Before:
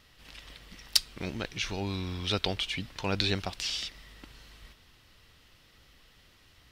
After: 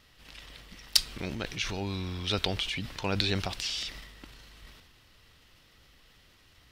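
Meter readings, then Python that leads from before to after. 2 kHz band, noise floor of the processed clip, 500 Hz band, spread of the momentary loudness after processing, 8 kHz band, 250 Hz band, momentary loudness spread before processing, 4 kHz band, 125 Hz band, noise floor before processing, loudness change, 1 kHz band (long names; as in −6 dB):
+0.5 dB, −61 dBFS, 0.0 dB, 22 LU, +1.0 dB, 0.0 dB, 21 LU, +0.5 dB, +1.0 dB, −61 dBFS, +0.5 dB, 0.0 dB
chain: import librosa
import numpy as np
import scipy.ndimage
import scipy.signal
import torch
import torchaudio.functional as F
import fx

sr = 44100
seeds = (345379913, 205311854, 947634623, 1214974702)

y = fx.transient(x, sr, attack_db=2, sustain_db=8)
y = y * 10.0 ** (-1.0 / 20.0)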